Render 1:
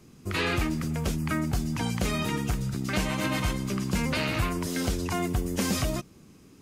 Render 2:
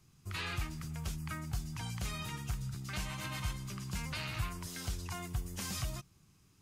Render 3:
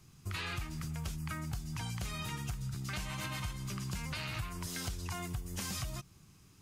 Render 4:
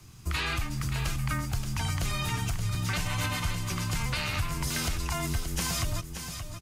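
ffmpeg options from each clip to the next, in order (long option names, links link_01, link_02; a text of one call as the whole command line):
ffmpeg -i in.wav -af "equalizer=frequency=125:width_type=o:width=1:gain=3,equalizer=frequency=250:width_type=o:width=1:gain=-12,equalizer=frequency=500:width_type=o:width=1:gain=-11,equalizer=frequency=2000:width_type=o:width=1:gain=-3,volume=-8dB" out.wav
ffmpeg -i in.wav -af "acompressor=threshold=-41dB:ratio=6,volume=5.5dB" out.wav
ffmpeg -i in.wav -filter_complex "[0:a]asplit=2[link_01][link_02];[link_02]volume=32dB,asoftclip=hard,volume=-32dB,volume=-11dB[link_03];[link_01][link_03]amix=inputs=2:normalize=0,afreqshift=-23,aecho=1:1:576|1152|1728:0.398|0.0717|0.0129,volume=6.5dB" out.wav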